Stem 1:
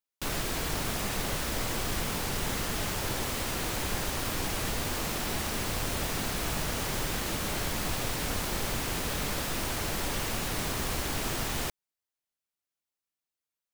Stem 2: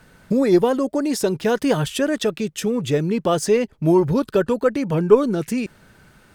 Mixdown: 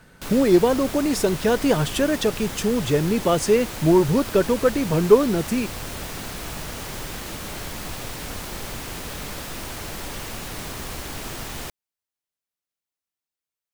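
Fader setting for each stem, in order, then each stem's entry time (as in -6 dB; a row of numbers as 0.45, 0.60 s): -1.0, -0.5 dB; 0.00, 0.00 s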